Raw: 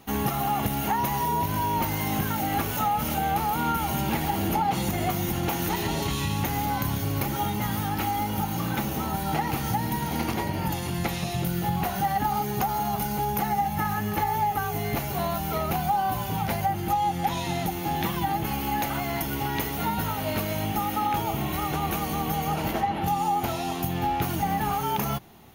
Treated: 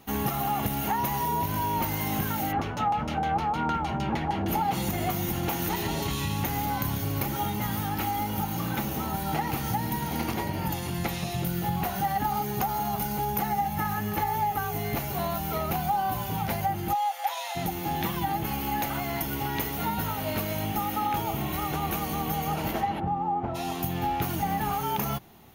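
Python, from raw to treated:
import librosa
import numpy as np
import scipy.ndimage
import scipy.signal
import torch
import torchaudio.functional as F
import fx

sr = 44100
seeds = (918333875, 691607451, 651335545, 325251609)

y = fx.filter_lfo_lowpass(x, sr, shape='saw_down', hz=6.5, low_hz=760.0, high_hz=6100.0, q=1.1, at=(2.51, 4.47), fade=0.02)
y = fx.steep_highpass(y, sr, hz=530.0, slope=72, at=(16.93, 17.55), fade=0.02)
y = fx.lowpass(y, sr, hz=1100.0, slope=12, at=(22.99, 23.54), fade=0.02)
y = fx.peak_eq(y, sr, hz=14000.0, db=3.5, octaves=0.2)
y = y * 10.0 ** (-2.0 / 20.0)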